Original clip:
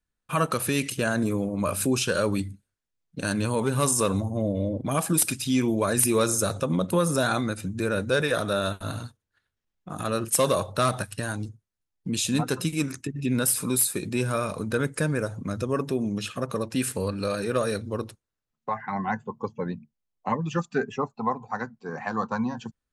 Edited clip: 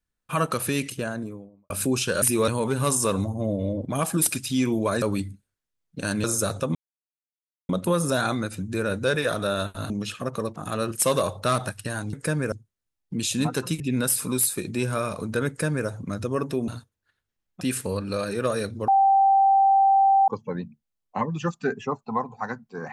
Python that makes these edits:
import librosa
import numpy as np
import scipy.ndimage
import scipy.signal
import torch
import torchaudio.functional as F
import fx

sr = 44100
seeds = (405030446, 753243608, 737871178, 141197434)

y = fx.studio_fade_out(x, sr, start_s=0.65, length_s=1.05)
y = fx.edit(y, sr, fx.swap(start_s=2.22, length_s=1.22, other_s=5.98, other_length_s=0.26),
    fx.insert_silence(at_s=6.75, length_s=0.94),
    fx.swap(start_s=8.96, length_s=0.93, other_s=16.06, other_length_s=0.66),
    fx.cut(start_s=12.74, length_s=0.44),
    fx.duplicate(start_s=14.86, length_s=0.39, to_s=11.46),
    fx.bleep(start_s=17.99, length_s=1.4, hz=782.0, db=-14.5), tone=tone)